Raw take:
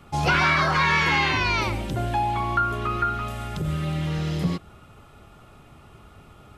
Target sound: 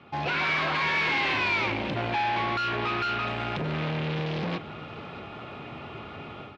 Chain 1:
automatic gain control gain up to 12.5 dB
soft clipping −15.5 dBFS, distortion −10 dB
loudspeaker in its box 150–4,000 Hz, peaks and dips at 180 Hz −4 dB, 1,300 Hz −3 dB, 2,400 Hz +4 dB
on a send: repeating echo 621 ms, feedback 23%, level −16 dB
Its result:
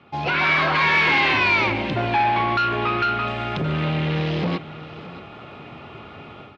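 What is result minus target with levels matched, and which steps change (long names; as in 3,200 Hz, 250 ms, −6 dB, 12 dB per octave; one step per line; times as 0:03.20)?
soft clipping: distortion −5 dB
change: soft clipping −25 dBFS, distortion −5 dB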